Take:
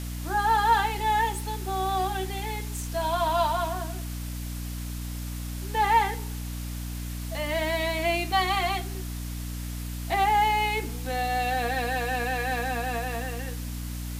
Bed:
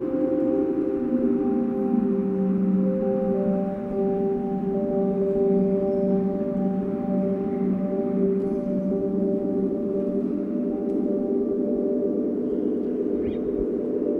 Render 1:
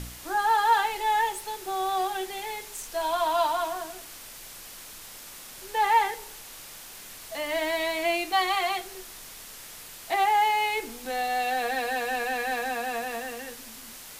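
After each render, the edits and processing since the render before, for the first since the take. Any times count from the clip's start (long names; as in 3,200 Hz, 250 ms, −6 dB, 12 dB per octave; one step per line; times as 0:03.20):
hum removal 60 Hz, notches 5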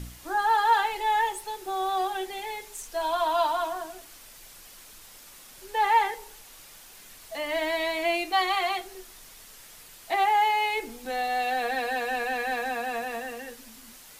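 broadband denoise 6 dB, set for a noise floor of −44 dBFS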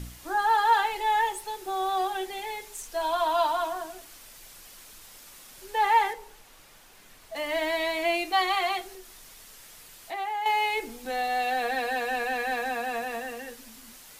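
0:06.13–0:07.36: high-shelf EQ 3,300 Hz −8.5 dB
0:08.95–0:10.46: downward compressor 1.5 to 1, threshold −45 dBFS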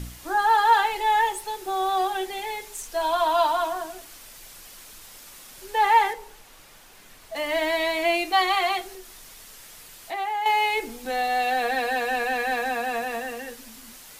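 level +3.5 dB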